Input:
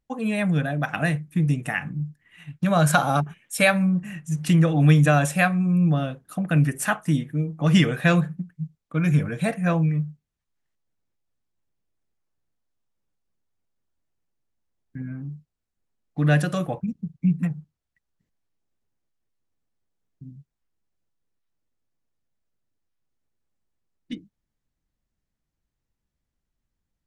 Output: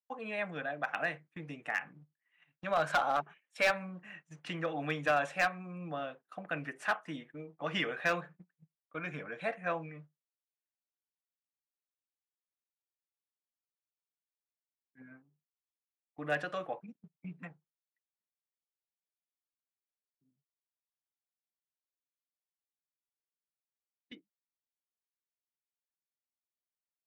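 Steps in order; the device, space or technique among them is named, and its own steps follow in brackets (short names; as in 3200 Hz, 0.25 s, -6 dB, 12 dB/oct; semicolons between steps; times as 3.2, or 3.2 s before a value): walkie-talkie (BPF 520–2900 Hz; hard clip -16.5 dBFS, distortion -14 dB; gate -47 dBFS, range -13 dB); 15.22–16.32 fifteen-band EQ 1600 Hz -6 dB, 4000 Hz -11 dB, 10000 Hz +6 dB; gain -6 dB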